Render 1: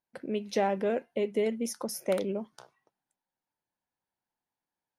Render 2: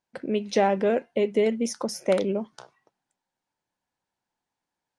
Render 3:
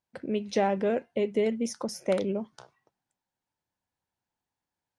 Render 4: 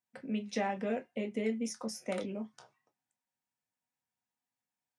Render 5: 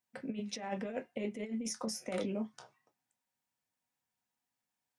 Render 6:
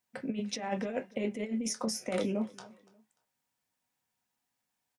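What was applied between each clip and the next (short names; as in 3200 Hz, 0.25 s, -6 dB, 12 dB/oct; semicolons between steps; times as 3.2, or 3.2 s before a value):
LPF 8700 Hz 24 dB/oct; gain +6 dB
bell 82 Hz +9 dB 1.5 oct; gain -4.5 dB
reverb, pre-delay 3 ms, DRR 4.5 dB; gain -5 dB
negative-ratio compressor -36 dBFS, ratio -0.5
feedback echo 0.293 s, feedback 34%, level -23 dB; gain +4.5 dB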